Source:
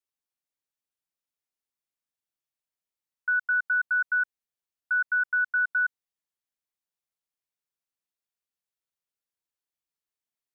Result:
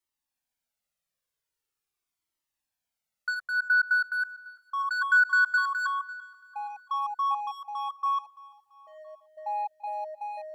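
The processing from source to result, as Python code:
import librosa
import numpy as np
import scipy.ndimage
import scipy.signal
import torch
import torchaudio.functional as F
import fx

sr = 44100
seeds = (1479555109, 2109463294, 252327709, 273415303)

p1 = fx.lowpass(x, sr, hz=fx.line((3.34, 1500.0), (4.22, 1400.0)), slope=12, at=(3.34, 4.22), fade=0.02)
p2 = np.clip(10.0 ** (28.5 / 20.0) * p1, -1.0, 1.0) / 10.0 ** (28.5 / 20.0)
p3 = p1 + (p2 * 10.0 ** (-3.5 / 20.0))
p4 = fx.echo_pitch(p3, sr, ms=358, semitones=-5, count=3, db_per_echo=-6.0)
p5 = p4 + fx.echo_feedback(p4, sr, ms=338, feedback_pct=47, wet_db=-20.0, dry=0)
p6 = fx.comb_cascade(p5, sr, direction='falling', hz=0.43)
y = p6 * 10.0 ** (3.5 / 20.0)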